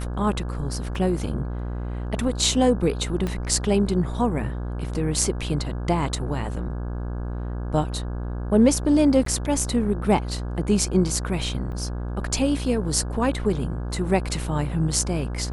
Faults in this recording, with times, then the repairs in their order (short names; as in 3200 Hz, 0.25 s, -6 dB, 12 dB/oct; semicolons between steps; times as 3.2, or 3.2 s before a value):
buzz 60 Hz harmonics 28 -29 dBFS
0.95 gap 2 ms
3.27 pop -15 dBFS
9.25–9.26 gap 13 ms
11.72 gap 4.3 ms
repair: de-click; de-hum 60 Hz, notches 28; interpolate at 0.95, 2 ms; interpolate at 9.25, 13 ms; interpolate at 11.72, 4.3 ms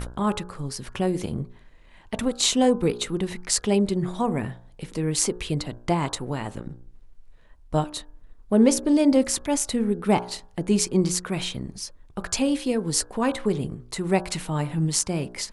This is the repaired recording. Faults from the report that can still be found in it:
3.27 pop